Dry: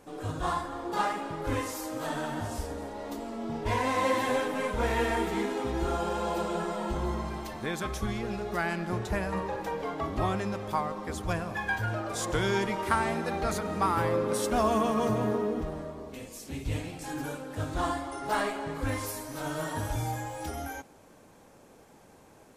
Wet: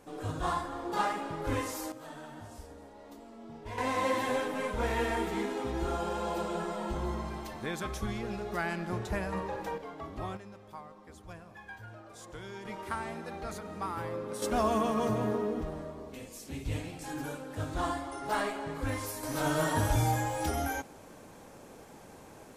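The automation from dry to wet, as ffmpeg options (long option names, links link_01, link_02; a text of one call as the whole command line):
ffmpeg -i in.wav -af "asetnsamples=nb_out_samples=441:pad=0,asendcmd='1.92 volume volume -12.5dB;3.78 volume volume -3dB;9.78 volume volume -9.5dB;10.37 volume volume -16.5dB;12.65 volume volume -9.5dB;14.42 volume volume -2.5dB;19.23 volume volume 4.5dB',volume=-1.5dB" out.wav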